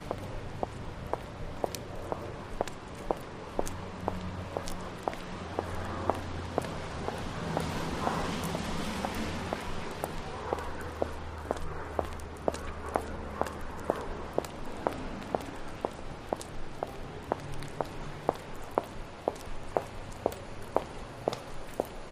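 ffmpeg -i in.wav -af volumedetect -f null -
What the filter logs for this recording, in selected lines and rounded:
mean_volume: -35.6 dB
max_volume: -7.1 dB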